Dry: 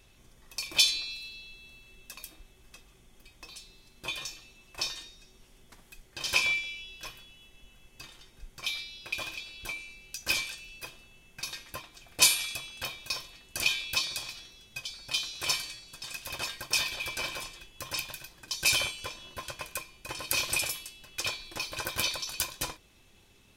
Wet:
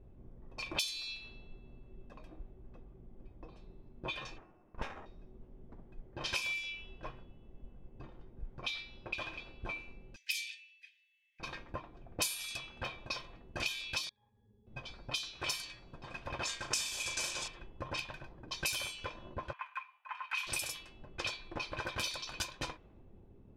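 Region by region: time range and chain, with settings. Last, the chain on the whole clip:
4.38–5.06 steep high-pass 920 Hz 72 dB/oct + upward compressor, threshold -56 dBFS + running maximum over 9 samples
10.16–11.4 steep high-pass 1900 Hz 72 dB/oct + upward compressor, threshold -45 dBFS
14.09–14.67 compressor 12:1, threshold -48 dBFS + octave resonator G#, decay 0.11 s
16.45–17.48 CVSD 64 kbps + bell 7200 Hz +12.5 dB 0.87 oct + flutter echo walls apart 6.3 m, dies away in 0.3 s
19.53–20.47 elliptic high-pass 950 Hz, stop band 70 dB + resonant high shelf 3600 Hz -9.5 dB, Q 1.5
whole clip: low-pass opened by the level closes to 440 Hz, open at -25.5 dBFS; high shelf 8800 Hz +5 dB; compressor 4:1, threshold -43 dBFS; gain +6 dB

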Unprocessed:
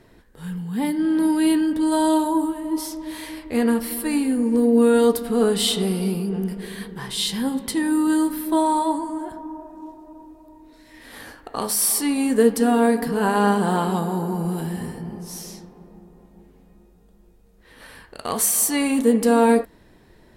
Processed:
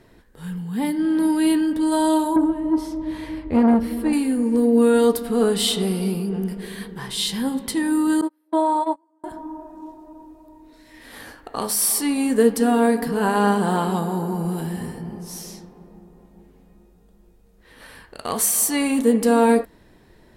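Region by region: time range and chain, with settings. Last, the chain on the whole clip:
2.36–4.13 HPF 59 Hz + RIAA curve playback + core saturation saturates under 450 Hz
8.21–9.24 HPF 390 Hz 24 dB/oct + tilt -3.5 dB/oct + gate -23 dBFS, range -34 dB
whole clip: dry

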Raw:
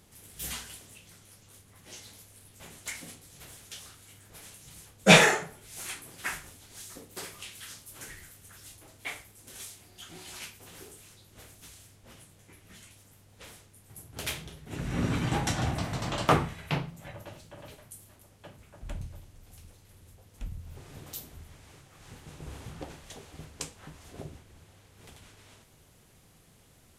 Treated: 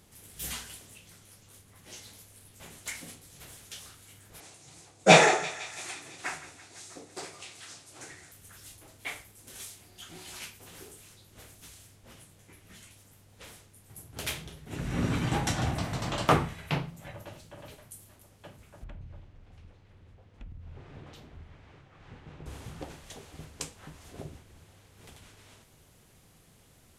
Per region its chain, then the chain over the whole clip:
4.4–8.32 speaker cabinet 110–8700 Hz, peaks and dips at 210 Hz -7 dB, 330 Hz +5 dB, 730 Hz +7 dB, 1700 Hz -3 dB, 3100 Hz -5 dB + thinning echo 0.167 s, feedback 70%, high-pass 920 Hz, level -14.5 dB
18.84–22.46 LPF 2700 Hz + compressor, threshold -40 dBFS
whole clip: dry

